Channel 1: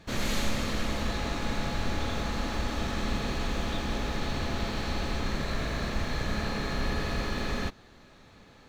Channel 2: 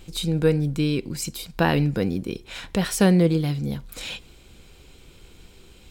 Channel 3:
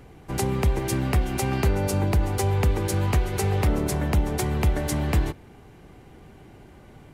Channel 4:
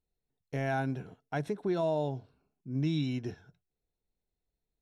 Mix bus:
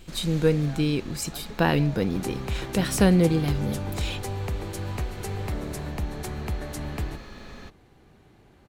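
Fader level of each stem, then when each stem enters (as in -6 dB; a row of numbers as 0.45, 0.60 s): -11.5, -1.5, -8.5, -12.5 dB; 0.00, 0.00, 1.85, 0.00 s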